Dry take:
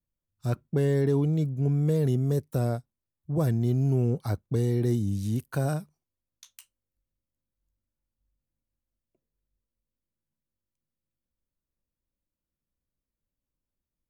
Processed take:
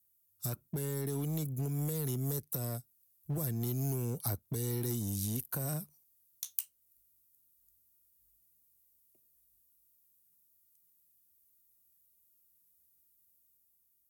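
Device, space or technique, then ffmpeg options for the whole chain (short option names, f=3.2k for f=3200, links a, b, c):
FM broadcast chain: -filter_complex "[0:a]highpass=f=50:w=0.5412,highpass=f=50:w=1.3066,dynaudnorm=f=300:g=5:m=3dB,acrossover=split=310|1200|6000[a][b][c][d];[a]acompressor=threshold=-26dB:ratio=4[e];[b]acompressor=threshold=-33dB:ratio=4[f];[c]acompressor=threshold=-48dB:ratio=4[g];[d]acompressor=threshold=-57dB:ratio=4[h];[e][f][g][h]amix=inputs=4:normalize=0,aemphasis=mode=production:type=50fm,alimiter=limit=-23.5dB:level=0:latency=1:release=355,asoftclip=type=hard:threshold=-26dB,lowpass=f=15k:w=0.5412,lowpass=f=15k:w=1.3066,aemphasis=mode=production:type=50fm,volume=-3.5dB"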